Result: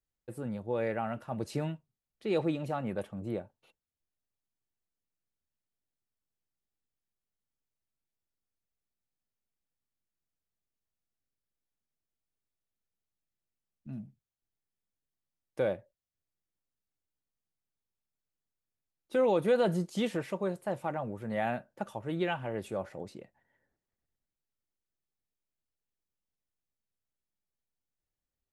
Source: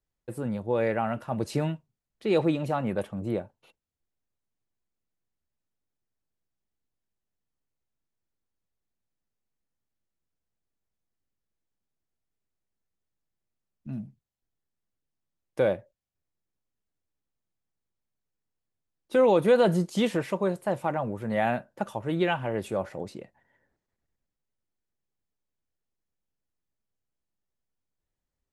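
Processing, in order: band-stop 1 kHz, Q 20; trim -6 dB

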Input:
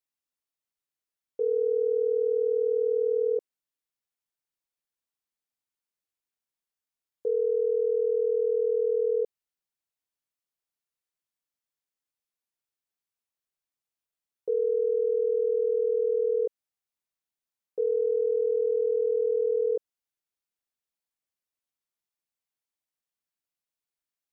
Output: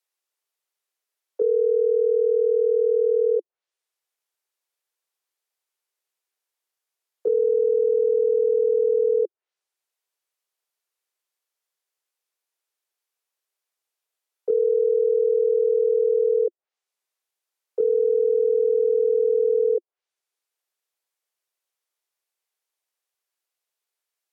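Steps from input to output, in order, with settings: steep high-pass 350 Hz 96 dB/octave; low-pass that closes with the level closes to 570 Hz, closed at -27.5 dBFS; trim +7 dB

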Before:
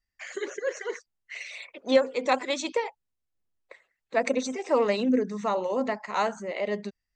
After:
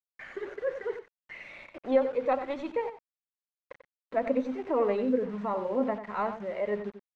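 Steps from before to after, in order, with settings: tracing distortion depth 0.028 ms; harmonic-percussive split percussive -5 dB; in parallel at -1 dB: upward compressor, threshold -28 dBFS; on the sum: phaser 0.34 Hz, delay 3.7 ms, feedback 31%; bit crusher 6-bit; low-pass 1.7 kHz 12 dB/octave; on a send: delay 92 ms -10.5 dB; on the sum: trim -7.5 dB

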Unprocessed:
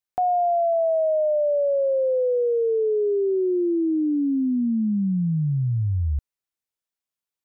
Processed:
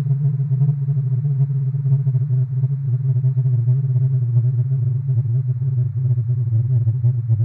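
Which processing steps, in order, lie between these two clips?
median filter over 41 samples; Paulstretch 40×, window 0.50 s, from 5.55 s; in parallel at -10 dB: hard clipper -25.5 dBFS, distortion -8 dB; on the sum: trim +3.5 dB

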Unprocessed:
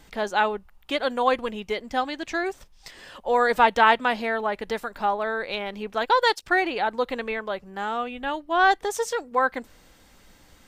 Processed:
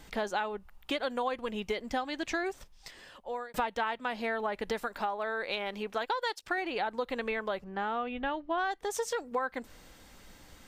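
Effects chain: 2.42–3.54 s: fade out; 7.64–8.58 s: distance through air 180 m; compression 8:1, threshold -29 dBFS, peak gain reduction 17 dB; 4.87–6.58 s: bass shelf 210 Hz -8 dB

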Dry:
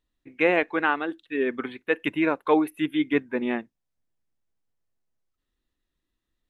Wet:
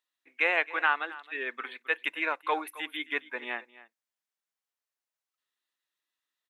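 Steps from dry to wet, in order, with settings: high-pass 940 Hz 12 dB/octave; on a send: delay 267 ms -18.5 dB

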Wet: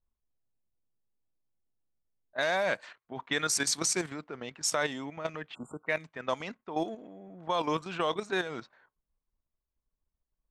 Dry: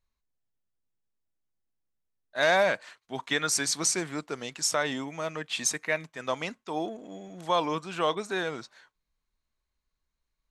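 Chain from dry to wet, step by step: spectral selection erased 5.54–5.87 s, 1.5–7 kHz; level held to a coarse grid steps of 10 dB; level-controlled noise filter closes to 850 Hz, open at -29 dBFS; trim +2 dB

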